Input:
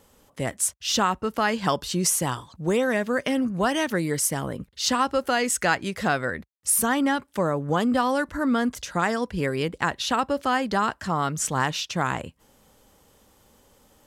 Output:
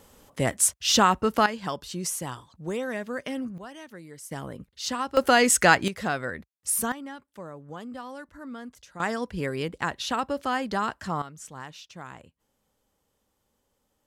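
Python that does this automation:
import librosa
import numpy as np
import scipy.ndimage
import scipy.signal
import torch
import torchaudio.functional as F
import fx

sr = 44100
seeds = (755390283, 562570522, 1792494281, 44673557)

y = fx.gain(x, sr, db=fx.steps((0.0, 3.0), (1.46, -8.0), (3.58, -19.0), (4.31, -7.0), (5.17, 4.5), (5.88, -4.5), (6.92, -16.5), (9.0, -4.0), (11.22, -16.5)))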